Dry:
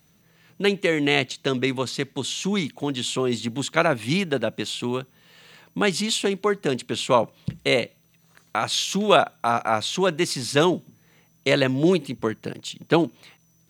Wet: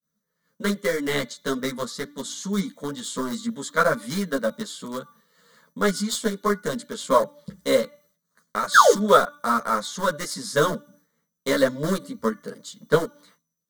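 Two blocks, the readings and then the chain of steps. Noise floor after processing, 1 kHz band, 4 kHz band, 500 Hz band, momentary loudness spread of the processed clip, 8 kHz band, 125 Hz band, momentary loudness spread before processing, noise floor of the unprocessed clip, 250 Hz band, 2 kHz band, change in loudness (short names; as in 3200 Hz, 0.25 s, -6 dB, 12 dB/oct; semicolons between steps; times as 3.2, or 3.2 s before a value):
-80 dBFS, +2.5 dB, -5.5 dB, 0.0 dB, 14 LU, +0.5 dB, -5.0 dB, 9 LU, -61 dBFS, -3.0 dB, 0.0 dB, -0.5 dB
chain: painted sound fall, 8.74–8.94, 310–1800 Hz -13 dBFS; low shelf 72 Hz -12 dB; de-hum 291.6 Hz, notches 15; in parallel at -5 dB: sample gate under -17 dBFS; on the sum: fixed phaser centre 520 Hz, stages 8; expander -52 dBFS; ensemble effect; gain +2.5 dB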